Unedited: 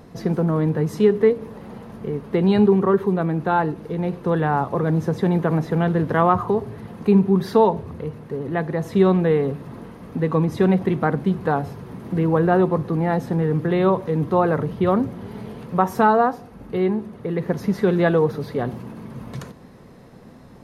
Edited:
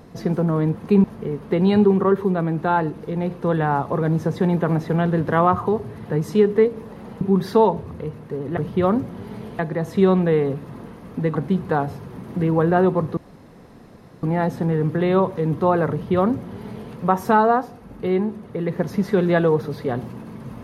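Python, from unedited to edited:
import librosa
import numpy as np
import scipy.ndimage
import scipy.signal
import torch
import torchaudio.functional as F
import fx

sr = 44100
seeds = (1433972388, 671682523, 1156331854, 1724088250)

y = fx.edit(x, sr, fx.swap(start_s=0.75, length_s=1.11, other_s=6.92, other_length_s=0.29),
    fx.cut(start_s=10.33, length_s=0.78),
    fx.insert_room_tone(at_s=12.93, length_s=1.06),
    fx.duplicate(start_s=14.61, length_s=1.02, to_s=8.57), tone=tone)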